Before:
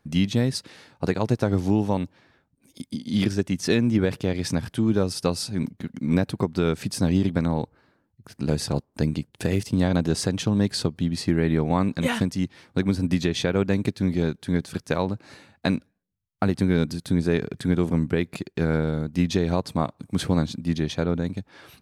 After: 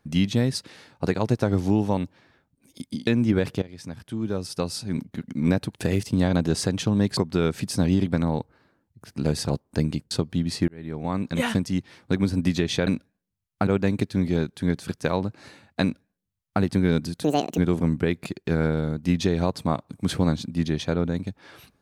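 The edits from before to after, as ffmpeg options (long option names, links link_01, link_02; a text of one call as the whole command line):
ffmpeg -i in.wav -filter_complex "[0:a]asplit=11[link_01][link_02][link_03][link_04][link_05][link_06][link_07][link_08][link_09][link_10][link_11];[link_01]atrim=end=3.072[link_12];[link_02]atrim=start=3.728:end=4.28,asetpts=PTS-STARTPTS,afade=type=out:start_time=0.548:duration=0.004:curve=hsin:silence=0.11885[link_13];[link_03]atrim=start=4.28:end=6.402,asetpts=PTS-STARTPTS,afade=type=in:duration=1.59:silence=0.11885[link_14];[link_04]atrim=start=9.338:end=10.772[link_15];[link_05]atrim=start=6.398:end=9.342[link_16];[link_06]atrim=start=10.768:end=11.34,asetpts=PTS-STARTPTS,afade=type=out:start_time=0.568:duration=0.004:curve=hsin[link_17];[link_07]atrim=start=11.34:end=13.532,asetpts=PTS-STARTPTS,afade=type=in:duration=0.79[link_18];[link_08]atrim=start=15.678:end=16.482[link_19];[link_09]atrim=start=13.528:end=17.104[link_20];[link_10]atrim=start=17.1:end=17.68,asetpts=PTS-STARTPTS,asetrate=75411,aresample=44100[link_21];[link_11]atrim=start=17.676[link_22];[link_13][link_14]concat=n=2:v=0:a=1[link_23];[link_12][link_23]acrossfade=duration=0.004:curve1=hsin:curve2=hsin[link_24];[link_24][link_15]acrossfade=duration=0.004:curve1=hsin:curve2=hsin[link_25];[link_25][link_16]acrossfade=duration=0.004:curve1=hsin:curve2=hsin[link_26];[link_17][link_18]concat=n=2:v=0:a=1[link_27];[link_26][link_27]acrossfade=duration=0.004:curve1=hsin:curve2=hsin[link_28];[link_28][link_19]acrossfade=duration=0.004:curve1=hsin:curve2=hsin[link_29];[link_29][link_20]acrossfade=duration=0.004:curve1=hsin:curve2=hsin[link_30];[link_30][link_21]acrossfade=duration=0.004:curve1=hsin:curve2=hsin[link_31];[link_31][link_22]acrossfade=duration=0.004:curve1=hsin:curve2=hsin" out.wav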